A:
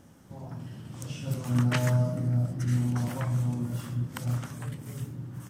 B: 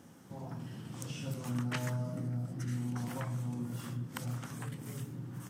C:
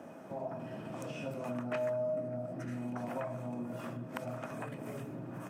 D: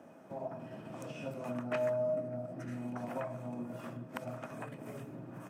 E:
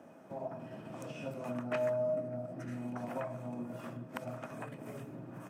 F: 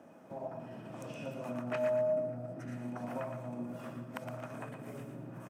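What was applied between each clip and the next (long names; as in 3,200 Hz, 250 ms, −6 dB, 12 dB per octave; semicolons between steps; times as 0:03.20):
notch filter 600 Hz, Q 12; downward compressor 2 to 1, threshold −36 dBFS, peak gain reduction 9 dB; high-pass filter 130 Hz
three-way crossover with the lows and the highs turned down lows −14 dB, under 220 Hz, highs −14 dB, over 2,000 Hz; hollow resonant body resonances 630/2,500 Hz, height 17 dB, ringing for 60 ms; downward compressor 2 to 1, threshold −49 dBFS, peak gain reduction 11 dB; level +8.5 dB
expander for the loud parts 1.5 to 1, over −48 dBFS; level +2 dB
no processing that can be heard
repeating echo 116 ms, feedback 35%, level −7.5 dB; level −1 dB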